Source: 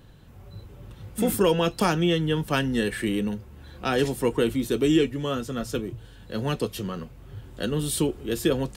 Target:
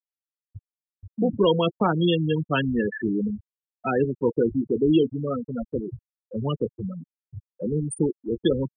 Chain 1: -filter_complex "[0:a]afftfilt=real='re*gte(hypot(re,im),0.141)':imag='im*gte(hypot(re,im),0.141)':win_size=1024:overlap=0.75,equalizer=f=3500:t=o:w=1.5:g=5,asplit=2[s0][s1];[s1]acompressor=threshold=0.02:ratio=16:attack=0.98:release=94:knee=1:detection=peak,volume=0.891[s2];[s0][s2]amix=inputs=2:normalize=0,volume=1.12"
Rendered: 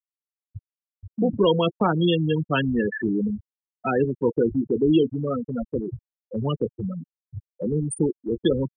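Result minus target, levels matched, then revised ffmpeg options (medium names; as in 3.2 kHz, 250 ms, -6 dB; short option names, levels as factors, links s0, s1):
compression: peak gain reduction -11 dB
-filter_complex "[0:a]afftfilt=real='re*gte(hypot(re,im),0.141)':imag='im*gte(hypot(re,im),0.141)':win_size=1024:overlap=0.75,equalizer=f=3500:t=o:w=1.5:g=5,asplit=2[s0][s1];[s1]acompressor=threshold=0.00531:ratio=16:attack=0.98:release=94:knee=1:detection=peak,volume=0.891[s2];[s0][s2]amix=inputs=2:normalize=0,volume=1.12"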